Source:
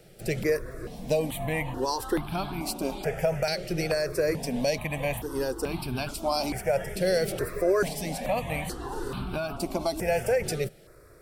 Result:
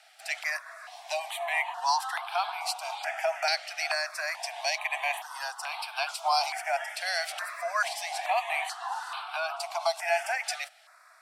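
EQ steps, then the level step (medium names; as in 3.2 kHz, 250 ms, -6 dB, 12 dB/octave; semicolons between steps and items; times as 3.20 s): steep high-pass 680 Hz 96 dB/octave; distance through air 58 m; +5.5 dB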